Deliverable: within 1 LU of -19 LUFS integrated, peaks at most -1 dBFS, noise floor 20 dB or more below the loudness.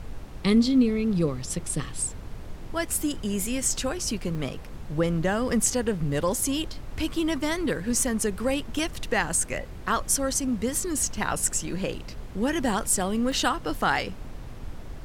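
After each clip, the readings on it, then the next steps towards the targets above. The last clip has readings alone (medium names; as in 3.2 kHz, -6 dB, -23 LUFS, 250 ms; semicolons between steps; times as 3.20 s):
dropouts 4; longest dropout 1.4 ms; noise floor -40 dBFS; noise floor target -47 dBFS; loudness -26.5 LUFS; peak level -10.0 dBFS; loudness target -19.0 LUFS
-> interpolate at 4.35/8.79/12.80/13.32 s, 1.4 ms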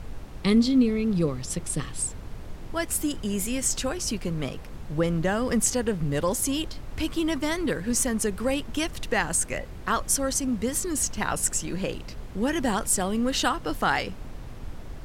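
dropouts 0; noise floor -40 dBFS; noise floor target -47 dBFS
-> noise print and reduce 7 dB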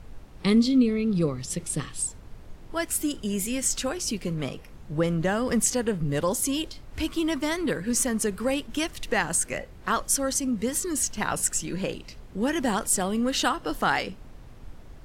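noise floor -46 dBFS; noise floor target -47 dBFS
-> noise print and reduce 6 dB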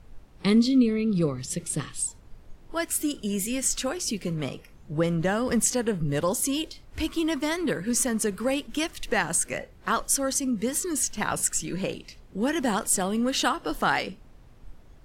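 noise floor -51 dBFS; loudness -26.5 LUFS; peak level -10.5 dBFS; loudness target -19.0 LUFS
-> trim +7.5 dB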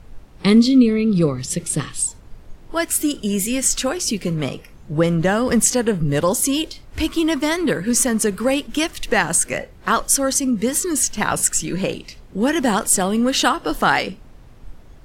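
loudness -19.0 LUFS; peak level -3.0 dBFS; noise floor -44 dBFS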